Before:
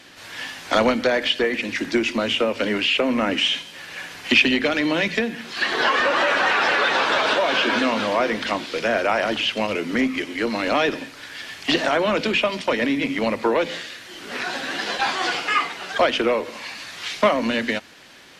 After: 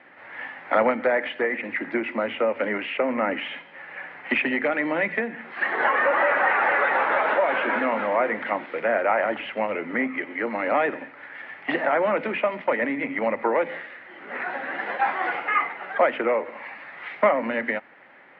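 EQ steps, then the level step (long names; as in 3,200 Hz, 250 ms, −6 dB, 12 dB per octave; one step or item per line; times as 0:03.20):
loudspeaker in its box 160–2,200 Hz, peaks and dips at 560 Hz +6 dB, 830 Hz +8 dB, 1,300 Hz +4 dB, 2,000 Hz +9 dB
−6.0 dB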